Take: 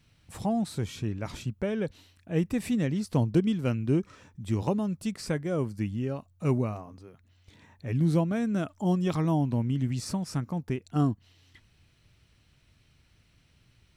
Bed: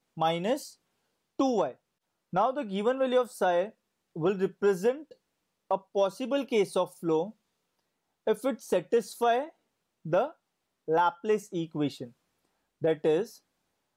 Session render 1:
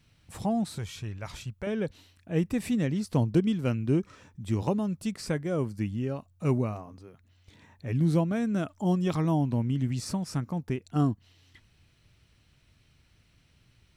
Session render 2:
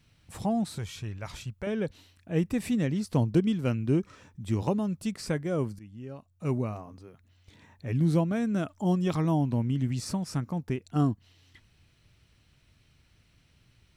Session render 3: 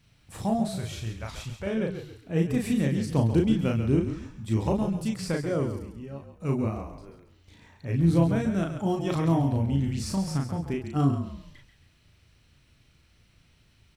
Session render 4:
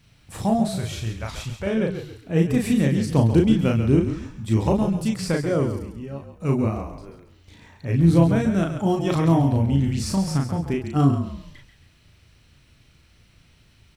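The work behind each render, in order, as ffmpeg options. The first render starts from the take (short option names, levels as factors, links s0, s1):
-filter_complex "[0:a]asettb=1/sr,asplit=3[s0][s1][s2];[s0]atrim=end=0.784[s3];[s1]atrim=start=0.78:end=1.67,asetpts=PTS-STARTPTS,afade=t=in:d=0.004:c=qsin,afade=t=out:st=0.886:d=0.004:c=qsin,equalizer=f=270:t=o:w=1.6:g=-12[s4];[s2]atrim=start=1.666[s5];[s3][s4]acrossfade=d=0.004:c1=hsin:c2=qsin[s6];[s6][s5]acrossfade=d=0.004:c1=qsin:c2=hsin"
-filter_complex "[0:a]asplit=2[s0][s1];[s0]atrim=end=5.79,asetpts=PTS-STARTPTS,afade=t=out:st=5.786:d=0.004:c=hsin:silence=0.0944061[s2];[s1]atrim=start=5.79,asetpts=PTS-STARTPTS,afade=t=in:d=1.08:silence=0.0944061[s3];[s2][s3]concat=n=2:v=0:a=1"
-filter_complex "[0:a]asplit=2[s0][s1];[s1]adelay=36,volume=0.708[s2];[s0][s2]amix=inputs=2:normalize=0,asplit=5[s3][s4][s5][s6][s7];[s4]adelay=136,afreqshift=-35,volume=0.355[s8];[s5]adelay=272,afreqshift=-70,volume=0.124[s9];[s6]adelay=408,afreqshift=-105,volume=0.0437[s10];[s7]adelay=544,afreqshift=-140,volume=0.0151[s11];[s3][s8][s9][s10][s11]amix=inputs=5:normalize=0"
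-af "volume=1.88"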